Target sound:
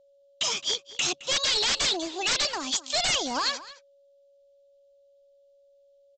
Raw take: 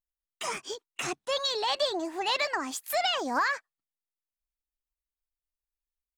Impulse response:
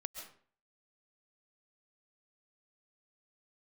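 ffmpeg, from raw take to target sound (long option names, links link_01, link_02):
-filter_complex "[0:a]highshelf=frequency=2500:width_type=q:width=3:gain=10,aresample=16000,aeval=exprs='0.106*(abs(mod(val(0)/0.106+3,4)-2)-1)':channel_layout=same,aresample=44100,aeval=exprs='val(0)+0.00126*sin(2*PI*560*n/s)':channel_layout=same,asplit=2[link_01][link_02];[link_02]adelay=215.7,volume=-16dB,highshelf=frequency=4000:gain=-4.85[link_03];[link_01][link_03]amix=inputs=2:normalize=0"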